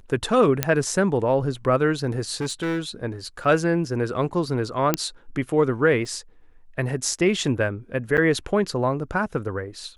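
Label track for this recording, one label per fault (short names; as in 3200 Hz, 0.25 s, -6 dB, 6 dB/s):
0.630000	0.630000	pop -3 dBFS
2.400000	2.800000	clipped -22 dBFS
3.440000	3.450000	gap 5.3 ms
4.940000	4.940000	pop -4 dBFS
6.050000	6.050000	gap 3 ms
8.170000	8.180000	gap 8.5 ms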